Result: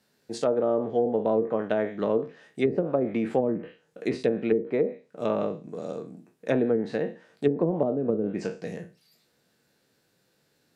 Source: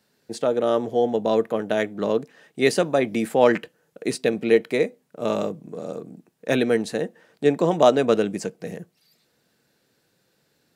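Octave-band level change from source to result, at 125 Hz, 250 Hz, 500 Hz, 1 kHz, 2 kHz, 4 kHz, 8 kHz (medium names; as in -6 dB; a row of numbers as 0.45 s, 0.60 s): -2.5 dB, -3.0 dB, -4.5 dB, -8.0 dB, -10.0 dB, -13.0 dB, under -10 dB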